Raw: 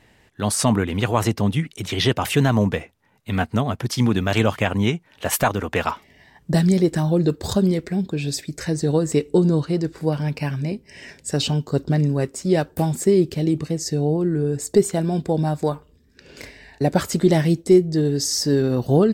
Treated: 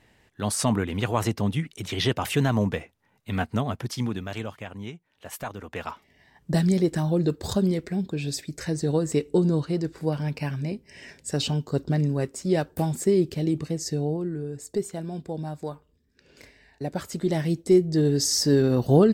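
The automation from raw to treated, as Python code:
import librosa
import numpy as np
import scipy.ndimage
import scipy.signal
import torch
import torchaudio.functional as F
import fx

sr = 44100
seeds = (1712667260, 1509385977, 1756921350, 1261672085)

y = fx.gain(x, sr, db=fx.line((3.75, -5.0), (4.57, -17.0), (5.27, -17.0), (6.54, -4.5), (13.93, -4.5), (14.48, -11.5), (17.01, -11.5), (18.08, -1.0)))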